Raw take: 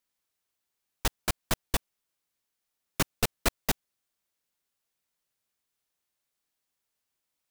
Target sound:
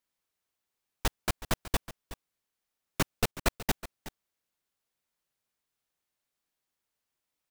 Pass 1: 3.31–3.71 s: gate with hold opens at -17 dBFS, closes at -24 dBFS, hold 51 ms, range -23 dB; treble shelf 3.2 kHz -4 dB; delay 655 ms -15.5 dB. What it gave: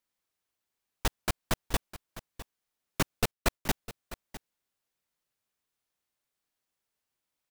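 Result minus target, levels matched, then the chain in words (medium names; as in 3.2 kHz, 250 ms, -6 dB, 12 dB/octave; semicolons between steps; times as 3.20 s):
echo 284 ms late
3.31–3.71 s: gate with hold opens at -17 dBFS, closes at -24 dBFS, hold 51 ms, range -23 dB; treble shelf 3.2 kHz -4 dB; delay 371 ms -15.5 dB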